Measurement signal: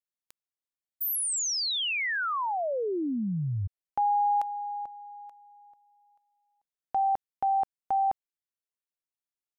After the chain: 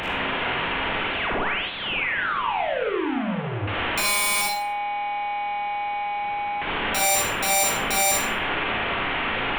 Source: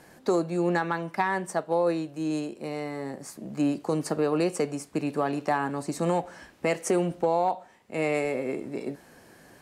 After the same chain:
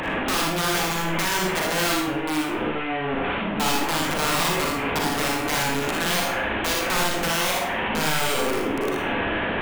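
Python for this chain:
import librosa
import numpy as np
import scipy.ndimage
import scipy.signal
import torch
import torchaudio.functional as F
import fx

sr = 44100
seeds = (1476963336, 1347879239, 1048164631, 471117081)

y = fx.delta_mod(x, sr, bps=16000, step_db=-22.5)
y = fx.dynamic_eq(y, sr, hz=150.0, q=2.1, threshold_db=-44.0, ratio=4.0, max_db=-6)
y = (np.mod(10.0 ** (20.5 / 20.0) * y + 1.0, 2.0) - 1.0) / 10.0 ** (20.5 / 20.0)
y = fx.room_early_taps(y, sr, ms=(59, 78), db=(-5.0, -5.5))
y = fx.rev_schroeder(y, sr, rt60_s=0.41, comb_ms=33, drr_db=2.0)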